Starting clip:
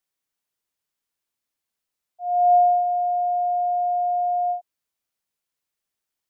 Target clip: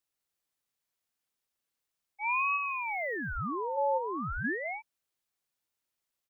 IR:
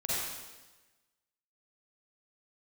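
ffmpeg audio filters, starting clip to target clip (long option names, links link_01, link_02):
-filter_complex "[0:a]asplit=3[link_01][link_02][link_03];[link_01]afade=type=out:start_time=2.35:duration=0.02[link_04];[link_02]aemphasis=mode=production:type=bsi,afade=type=in:start_time=2.35:duration=0.02,afade=type=out:start_time=3.14:duration=0.02[link_05];[link_03]afade=type=in:start_time=3.14:duration=0.02[link_06];[link_04][link_05][link_06]amix=inputs=3:normalize=0,asplit=3[link_07][link_08][link_09];[link_07]afade=type=out:start_time=3.76:duration=0.02[link_10];[link_08]highpass=730,afade=type=in:start_time=3.76:duration=0.02,afade=type=out:start_time=4.43:duration=0.02[link_11];[link_09]afade=type=in:start_time=4.43:duration=0.02[link_12];[link_10][link_11][link_12]amix=inputs=3:normalize=0,acompressor=threshold=-25dB:ratio=6,aecho=1:1:209:0.501,aeval=exprs='val(0)*sin(2*PI*1000*n/s+1000*0.85/0.39*sin(2*PI*0.39*n/s))':channel_layout=same"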